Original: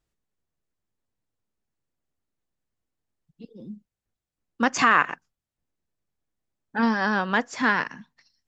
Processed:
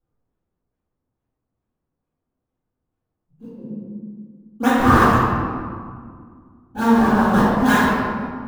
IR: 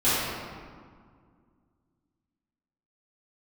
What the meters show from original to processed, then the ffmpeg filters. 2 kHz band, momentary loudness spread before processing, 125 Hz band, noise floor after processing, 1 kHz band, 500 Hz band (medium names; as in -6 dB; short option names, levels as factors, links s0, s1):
+1.5 dB, 18 LU, +17.0 dB, -81 dBFS, +7.0 dB, +10.0 dB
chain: -filter_complex "[0:a]lowpass=3600,acrossover=split=440|1500[s0][s1][s2];[s2]acrusher=samples=39:mix=1:aa=0.000001:lfo=1:lforange=62.4:lforate=2.3[s3];[s0][s1][s3]amix=inputs=3:normalize=0[s4];[1:a]atrim=start_sample=2205[s5];[s4][s5]afir=irnorm=-1:irlink=0,volume=0.355"